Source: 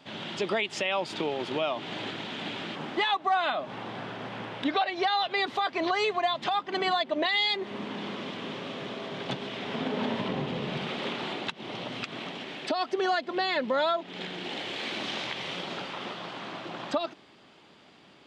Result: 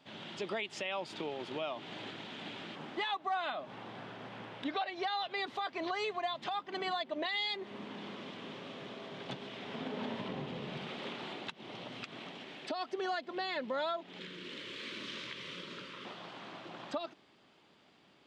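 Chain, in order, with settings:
0:14.19–0:16.05: Butterworth band-reject 760 Hz, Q 1.6
level −9 dB

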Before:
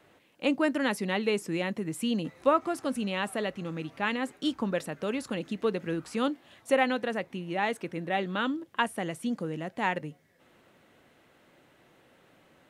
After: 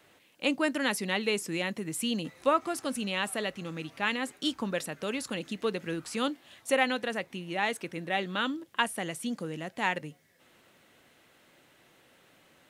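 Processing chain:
high-shelf EQ 2,100 Hz +9.5 dB
level −3 dB

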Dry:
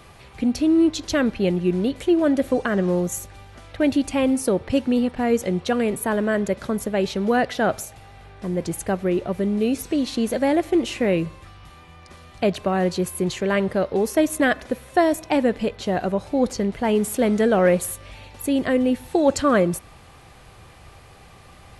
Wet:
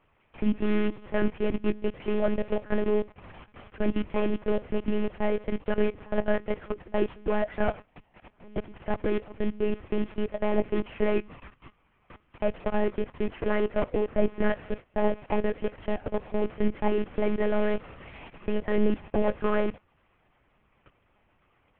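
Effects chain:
variable-slope delta modulation 16 kbit/s
output level in coarse steps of 22 dB
amplitude modulation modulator 90 Hz, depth 30%
flanger 0.57 Hz, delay 5.5 ms, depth 4.4 ms, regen +61%
one-pitch LPC vocoder at 8 kHz 210 Hz
level +5.5 dB

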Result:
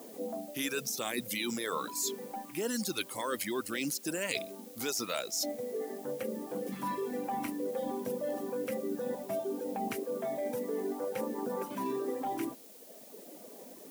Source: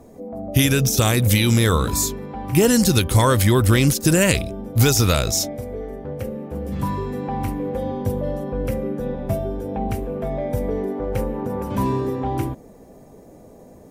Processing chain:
reverb reduction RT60 1.4 s
high-pass filter 230 Hz 24 dB per octave
parametric band 2,100 Hz +2 dB
reversed playback
downward compressor 8 to 1, threshold −30 dBFS, peak gain reduction 16.5 dB
reversed playback
background noise blue −53 dBFS
level −1.5 dB

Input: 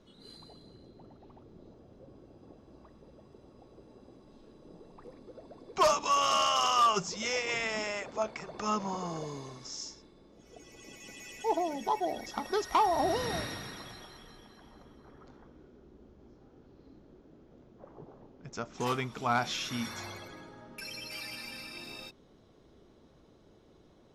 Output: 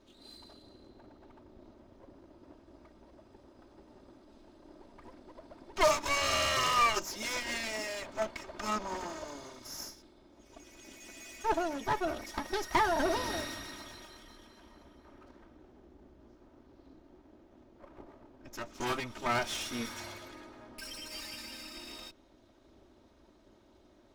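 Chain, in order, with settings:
lower of the sound and its delayed copy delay 3.2 ms

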